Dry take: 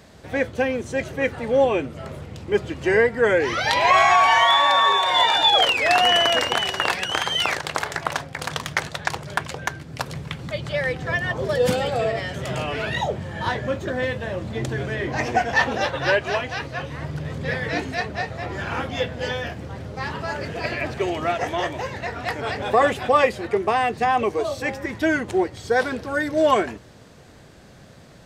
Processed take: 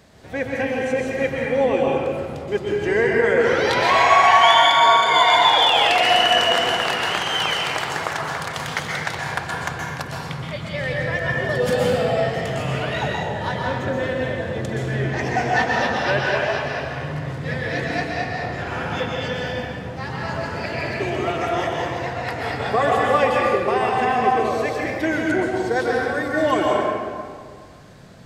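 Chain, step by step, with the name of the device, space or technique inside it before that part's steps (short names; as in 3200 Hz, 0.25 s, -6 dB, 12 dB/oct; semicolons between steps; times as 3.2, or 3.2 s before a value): 4.43–5.23 ripple EQ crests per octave 1.8, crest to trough 18 dB; stairwell (reverb RT60 1.9 s, pre-delay 0.116 s, DRR -2.5 dB); gain -3 dB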